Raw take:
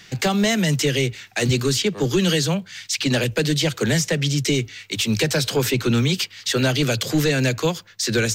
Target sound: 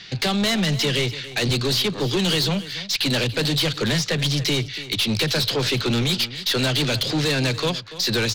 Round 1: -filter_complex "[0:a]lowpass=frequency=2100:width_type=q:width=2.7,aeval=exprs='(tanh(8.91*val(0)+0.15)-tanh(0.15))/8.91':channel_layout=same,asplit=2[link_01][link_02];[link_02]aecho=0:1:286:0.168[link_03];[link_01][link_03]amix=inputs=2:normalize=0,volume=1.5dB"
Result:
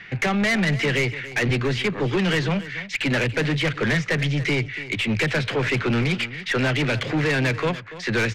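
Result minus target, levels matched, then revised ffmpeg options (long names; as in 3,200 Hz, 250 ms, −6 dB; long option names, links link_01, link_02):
4,000 Hz band −7.5 dB
-filter_complex "[0:a]lowpass=frequency=4200:width_type=q:width=2.7,aeval=exprs='(tanh(8.91*val(0)+0.15)-tanh(0.15))/8.91':channel_layout=same,asplit=2[link_01][link_02];[link_02]aecho=0:1:286:0.168[link_03];[link_01][link_03]amix=inputs=2:normalize=0,volume=1.5dB"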